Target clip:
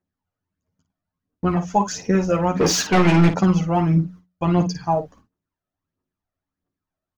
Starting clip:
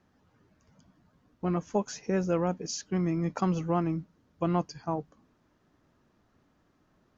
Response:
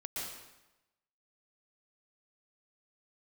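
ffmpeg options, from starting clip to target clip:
-filter_complex "[0:a]agate=range=-29dB:threshold=-55dB:ratio=16:detection=peak,aphaser=in_gain=1:out_gain=1:delay=1.7:decay=0.6:speed=1.5:type=triangular,asplit=3[a][b][c];[a]afade=t=out:st=2.55:d=0.02[d];[b]asplit=2[e][f];[f]highpass=f=720:p=1,volume=31dB,asoftclip=type=tanh:threshold=-16dB[g];[e][g]amix=inputs=2:normalize=0,lowpass=f=2.5k:p=1,volume=-6dB,afade=t=in:st=2.55:d=0.02,afade=t=out:st=3.28:d=0.02[h];[c]afade=t=in:st=3.28:d=0.02[i];[d][h][i]amix=inputs=3:normalize=0,bandreject=f=60:t=h:w=6,bandreject=f=120:t=h:w=6,bandreject=f=180:t=h:w=6,aecho=1:1:11|55:0.631|0.335,volume=7dB"

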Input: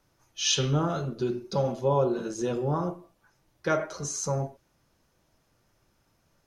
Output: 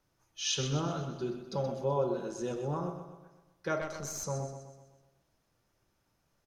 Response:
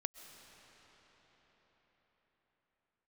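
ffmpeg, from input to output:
-filter_complex "[0:a]aecho=1:1:126|252|378|504|630|756:0.355|0.177|0.0887|0.0444|0.0222|0.0111,asettb=1/sr,asplit=3[a][b][c];[a]atrim=end=3.814[d];[b]atrim=start=3.81:end=4.24,asetpts=PTS-STARTPTS,afade=t=in:d=0.004:c=qsin,afade=t=out:st=0.426:d=0.004:c=qsin,aeval=exprs='0.1*(cos(1*acos(clip(val(0)/0.1,-1,1)))-cos(1*PI/2))+0.0141*(cos(4*acos(clip(val(0)/0.1,-1,1)))-cos(4*PI/2))':c=same[e];[c]atrim=start=4.236[f];[d][e]acrossfade=d=0.004:c1=hsin:c2=qsin[g];[g][f]acrossfade=d=0.004:c1=qsin:c2=hsin,volume=-7dB"

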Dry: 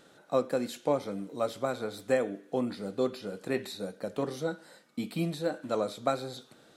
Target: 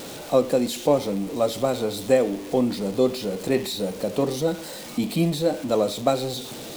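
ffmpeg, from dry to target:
-af "aeval=exprs='val(0)+0.5*0.0106*sgn(val(0))':c=same,equalizer=f=1.5k:t=o:w=0.84:g=-9.5,volume=8.5dB"

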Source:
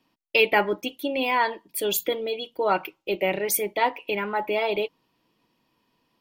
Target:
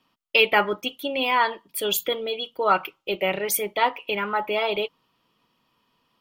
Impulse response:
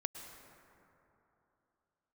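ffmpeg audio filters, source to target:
-af "equalizer=f=315:t=o:w=0.33:g=-6,equalizer=f=1.25k:t=o:w=0.33:g=10,equalizer=f=3.15k:t=o:w=0.33:g=6"

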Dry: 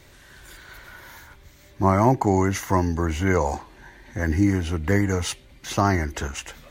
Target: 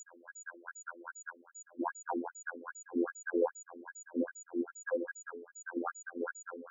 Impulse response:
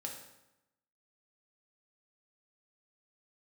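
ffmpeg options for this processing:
-filter_complex "[0:a]asplit=2[a][b];[b]highpass=f=720:p=1,volume=20dB,asoftclip=type=tanh:threshold=-3.5dB[c];[a][c]amix=inputs=2:normalize=0,lowpass=f=2.4k:p=1,volume=-6dB[d];[1:a]atrim=start_sample=2205,asetrate=79380,aresample=44100[e];[d][e]afir=irnorm=-1:irlink=0,asubboost=boost=11.5:cutoff=200,acompressor=threshold=-27dB:ratio=2,afftfilt=real='hypot(re,im)*cos(PI*b)':imag='0':win_size=2048:overlap=0.75,afftfilt=real='re*(1-between(b*sr/4096,1700,8600))':imag='im*(1-between(b*sr/4096,1700,8600))':win_size=4096:overlap=0.75,aeval=exprs='val(0)+0.00282*sin(2*PI*6900*n/s)':c=same,afftfilt=real='re*between(b*sr/1024,330*pow(6000/330,0.5+0.5*sin(2*PI*2.5*pts/sr))/1.41,330*pow(6000/330,0.5+0.5*sin(2*PI*2.5*pts/sr))*1.41)':imag='im*between(b*sr/1024,330*pow(6000/330,0.5+0.5*sin(2*PI*2.5*pts/sr))/1.41,330*pow(6000/330,0.5+0.5*sin(2*PI*2.5*pts/sr))*1.41)':win_size=1024:overlap=0.75,volume=5dB"

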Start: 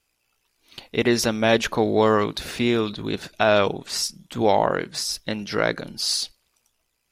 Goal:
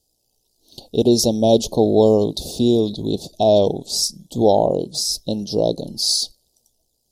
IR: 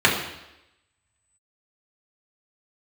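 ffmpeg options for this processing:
-af "asuperstop=centerf=1700:order=8:qfactor=0.55,volume=5.5dB"

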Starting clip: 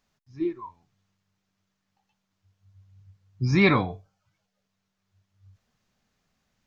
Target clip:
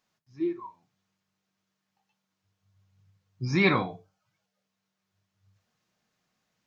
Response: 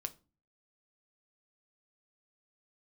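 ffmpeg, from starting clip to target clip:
-filter_complex "[0:a]highpass=f=210:p=1[a];[1:a]atrim=start_sample=2205,atrim=end_sample=4410[b];[a][b]afir=irnorm=-1:irlink=0"

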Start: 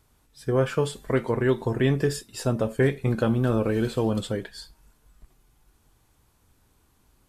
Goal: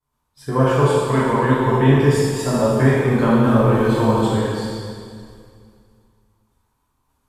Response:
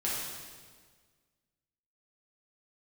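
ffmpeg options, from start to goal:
-filter_complex "[0:a]agate=range=-33dB:threshold=-52dB:ratio=3:detection=peak,equalizer=f=990:w=2.5:g=11.5[a];[1:a]atrim=start_sample=2205,asetrate=31752,aresample=44100[b];[a][b]afir=irnorm=-1:irlink=0,volume=-2.5dB"

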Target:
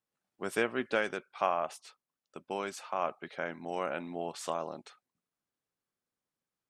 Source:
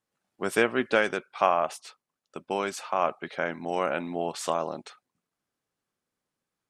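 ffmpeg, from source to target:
-af "volume=-7dB"

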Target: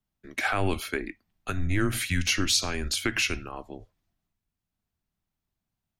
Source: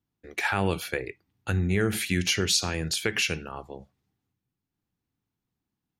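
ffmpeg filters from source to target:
-af "aeval=exprs='0.282*(cos(1*acos(clip(val(0)/0.282,-1,1)))-cos(1*PI/2))+0.00224*(cos(8*acos(clip(val(0)/0.282,-1,1)))-cos(8*PI/2))':c=same,afreqshift=-95"

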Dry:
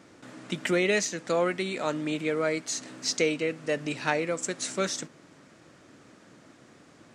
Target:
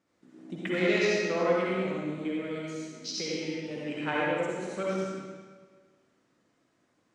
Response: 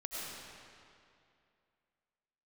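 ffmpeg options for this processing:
-filter_complex "[0:a]afwtdn=0.02,asettb=1/sr,asplit=3[a][b][c];[a]atrim=end=1.694[d];[b]atrim=start=1.69:end=3.76,asetpts=PTS-STARTPTS,afade=t=in:d=0.004:c=qsin,afade=t=out:st=2.066:d=0.004:c=qsin,acrossover=split=360|3000[e][f][g];[f]acompressor=threshold=-40dB:ratio=6[h];[e][h][g]amix=inputs=3:normalize=0[i];[c]atrim=start=3.756[j];[d][i]acrossfade=d=0.004:c1=hsin:c2=qsin[k];[k][j]acrossfade=d=0.004:c1=qsin:c2=hsin[l];[1:a]atrim=start_sample=2205,asetrate=70560,aresample=44100[m];[l][m]afir=irnorm=-1:irlink=0,volume=2.5dB"

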